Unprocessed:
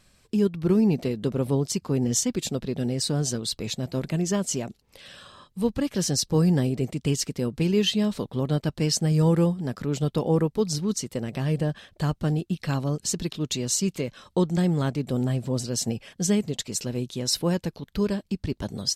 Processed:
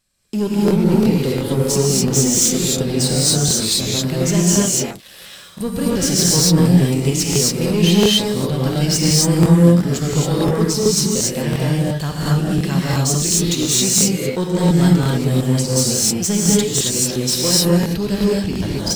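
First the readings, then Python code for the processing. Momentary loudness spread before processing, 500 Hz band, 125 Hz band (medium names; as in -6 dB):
8 LU, +8.0 dB, +9.0 dB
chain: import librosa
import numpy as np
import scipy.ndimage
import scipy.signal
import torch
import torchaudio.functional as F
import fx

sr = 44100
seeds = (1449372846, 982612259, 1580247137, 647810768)

y = fx.high_shelf(x, sr, hz=4500.0, db=10.5)
y = fx.leveller(y, sr, passes=3)
y = fx.rev_gated(y, sr, seeds[0], gate_ms=300, shape='rising', drr_db=-6.0)
y = fx.buffer_crackle(y, sr, first_s=0.66, period_s=0.35, block=1024, kind='repeat')
y = y * 10.0 ** (-8.5 / 20.0)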